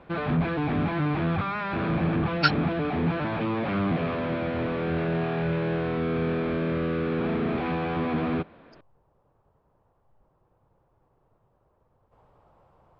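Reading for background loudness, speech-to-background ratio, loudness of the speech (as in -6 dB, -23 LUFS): -27.5 LUFS, 1.0 dB, -26.5 LUFS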